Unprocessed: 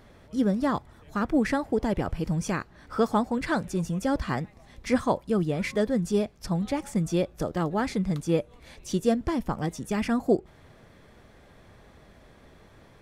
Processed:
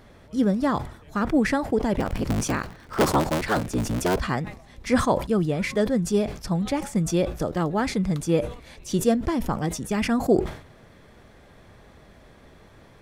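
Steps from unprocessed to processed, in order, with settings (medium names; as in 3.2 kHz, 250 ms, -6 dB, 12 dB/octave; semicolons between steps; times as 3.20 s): 1.98–4.23 s: cycle switcher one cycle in 3, inverted; decay stretcher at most 110 dB/s; trim +2.5 dB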